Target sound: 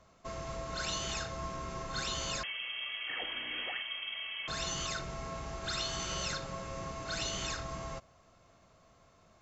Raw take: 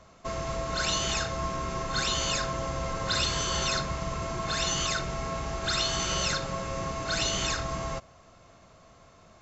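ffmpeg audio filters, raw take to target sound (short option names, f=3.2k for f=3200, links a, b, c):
-filter_complex "[0:a]asettb=1/sr,asplit=3[a][b][c];[a]atrim=end=2.434[d];[b]atrim=start=2.43:end=4.48,asetpts=PTS-STARTPTS,afade=t=in:d=0.004:c=qsin,afade=t=out:st=2.046:d=0.004:c=qsin,lowpass=f=2.8k:t=q:w=0.5098,lowpass=f=2.8k:t=q:w=0.6013,lowpass=f=2.8k:t=q:w=0.9,lowpass=f=2.8k:t=q:w=2.563,afreqshift=-3300[e];[c]atrim=start=4.476[f];[d][e]acrossfade=d=0.004:c1=hsin:c2=qsin[g];[g][f]acrossfade=d=0.004:c1=qsin:c2=hsin,volume=-8dB"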